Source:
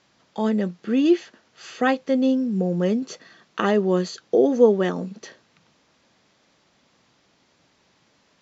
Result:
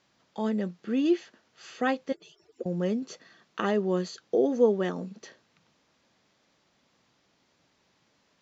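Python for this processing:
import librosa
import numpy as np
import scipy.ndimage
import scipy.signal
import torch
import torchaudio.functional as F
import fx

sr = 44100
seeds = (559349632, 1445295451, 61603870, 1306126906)

y = fx.hpss_only(x, sr, part='percussive', at=(2.12, 2.66))
y = y * 10.0 ** (-6.5 / 20.0)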